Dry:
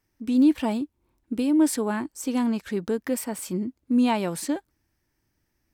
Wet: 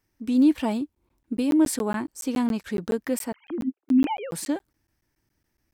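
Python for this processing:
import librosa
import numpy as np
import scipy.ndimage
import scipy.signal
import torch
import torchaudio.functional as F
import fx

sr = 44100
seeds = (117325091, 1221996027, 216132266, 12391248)

y = fx.sine_speech(x, sr, at=(3.32, 4.32))
y = fx.buffer_crackle(y, sr, first_s=0.95, period_s=0.14, block=512, kind='zero')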